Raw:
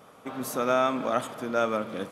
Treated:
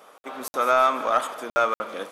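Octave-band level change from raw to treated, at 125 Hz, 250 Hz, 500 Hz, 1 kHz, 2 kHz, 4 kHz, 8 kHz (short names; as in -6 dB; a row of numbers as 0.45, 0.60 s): under -10 dB, -7.0 dB, +2.0 dB, +7.0 dB, +5.5 dB, +3.0 dB, +1.0 dB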